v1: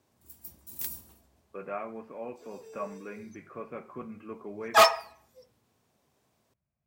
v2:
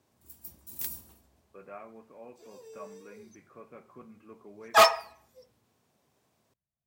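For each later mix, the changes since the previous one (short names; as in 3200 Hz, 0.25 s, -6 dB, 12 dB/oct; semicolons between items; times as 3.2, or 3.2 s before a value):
speech -9.0 dB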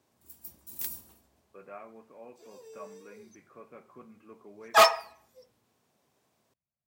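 master: add low shelf 120 Hz -7 dB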